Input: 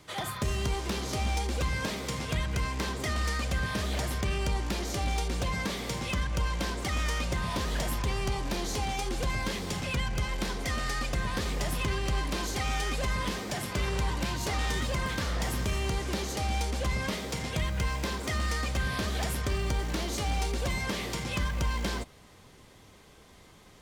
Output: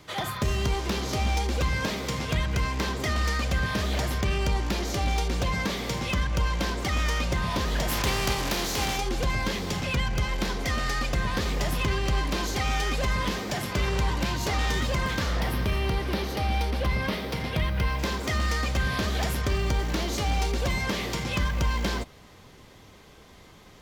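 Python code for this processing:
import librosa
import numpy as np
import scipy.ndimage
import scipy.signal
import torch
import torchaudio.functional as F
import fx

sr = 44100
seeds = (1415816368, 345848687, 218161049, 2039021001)

y = fx.spec_flatten(x, sr, power=0.63, at=(7.88, 8.97), fade=0.02)
y = fx.peak_eq(y, sr, hz=7000.0, db=-14.0, octaves=0.51, at=(15.4, 17.99))
y = fx.peak_eq(y, sr, hz=9000.0, db=-7.0, octaves=0.53)
y = y * librosa.db_to_amplitude(4.0)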